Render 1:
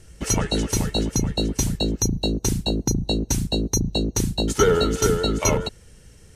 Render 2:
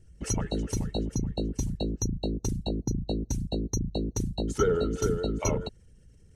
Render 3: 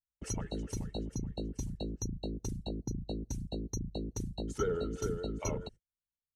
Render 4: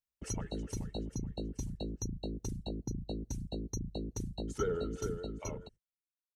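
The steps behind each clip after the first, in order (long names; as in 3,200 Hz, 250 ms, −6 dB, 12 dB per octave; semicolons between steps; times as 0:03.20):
spectral envelope exaggerated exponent 1.5; level −7 dB
noise gate −41 dBFS, range −43 dB; level −8 dB
fade-out on the ending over 1.44 s; level −1 dB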